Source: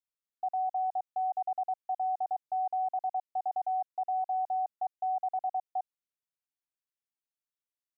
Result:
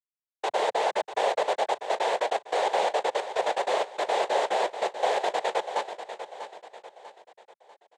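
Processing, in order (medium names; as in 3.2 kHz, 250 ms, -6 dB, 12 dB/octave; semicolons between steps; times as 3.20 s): gate with hold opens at -35 dBFS; waveshaping leveller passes 3; noise-vocoded speech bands 6; on a send: feedback delay 644 ms, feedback 42%, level -11 dB; on the sum: trim +3.5 dB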